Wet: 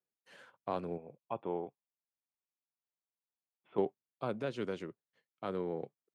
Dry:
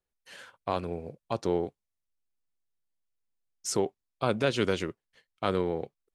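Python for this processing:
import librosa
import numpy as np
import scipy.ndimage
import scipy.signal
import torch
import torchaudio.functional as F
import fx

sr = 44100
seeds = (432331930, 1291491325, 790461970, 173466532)

y = fx.cheby_ripple(x, sr, hz=3500.0, ripple_db=9, at=(0.97, 3.78))
y = fx.rider(y, sr, range_db=4, speed_s=0.5)
y = scipy.signal.sosfilt(scipy.signal.butter(4, 120.0, 'highpass', fs=sr, output='sos'), y)
y = fx.high_shelf(y, sr, hz=2200.0, db=-10.5)
y = F.gain(torch.from_numpy(y), -6.0).numpy()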